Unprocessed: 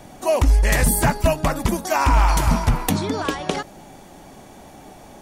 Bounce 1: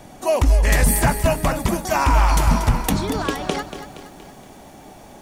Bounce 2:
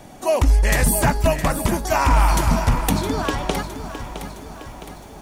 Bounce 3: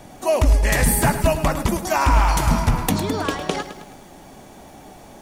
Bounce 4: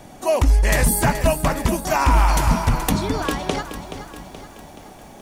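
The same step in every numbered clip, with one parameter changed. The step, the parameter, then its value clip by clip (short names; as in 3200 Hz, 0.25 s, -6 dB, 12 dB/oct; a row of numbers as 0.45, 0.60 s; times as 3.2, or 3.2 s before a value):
lo-fi delay, time: 0.235, 0.663, 0.106, 0.426 s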